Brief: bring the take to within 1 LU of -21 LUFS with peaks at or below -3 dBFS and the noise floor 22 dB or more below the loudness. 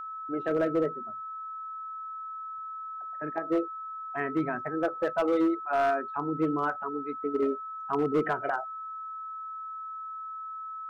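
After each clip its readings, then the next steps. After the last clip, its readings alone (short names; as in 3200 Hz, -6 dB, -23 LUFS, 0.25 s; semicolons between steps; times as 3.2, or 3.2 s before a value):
clipped 0.8%; flat tops at -20.0 dBFS; steady tone 1300 Hz; tone level -36 dBFS; loudness -31.5 LUFS; peak -20.0 dBFS; loudness target -21.0 LUFS
-> clip repair -20 dBFS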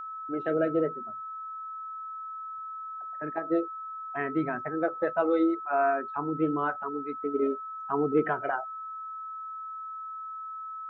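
clipped 0.0%; steady tone 1300 Hz; tone level -36 dBFS
-> notch 1300 Hz, Q 30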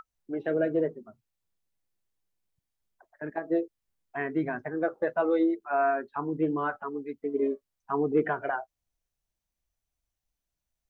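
steady tone none; loudness -29.5 LUFS; peak -14.0 dBFS; loudness target -21.0 LUFS
-> gain +8.5 dB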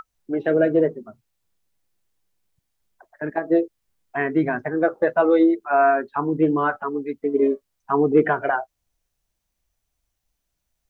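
loudness -21.0 LUFS; peak -5.5 dBFS; noise floor -78 dBFS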